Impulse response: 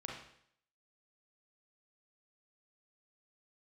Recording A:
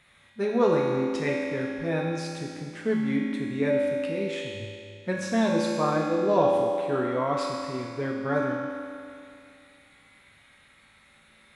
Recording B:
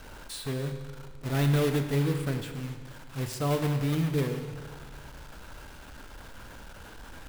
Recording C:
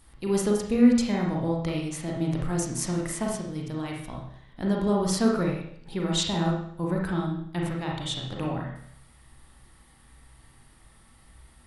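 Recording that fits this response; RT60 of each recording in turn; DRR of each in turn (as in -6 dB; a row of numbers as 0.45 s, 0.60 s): C; 2.4 s, 1.8 s, 0.65 s; -3.5 dB, 6.5 dB, -2.0 dB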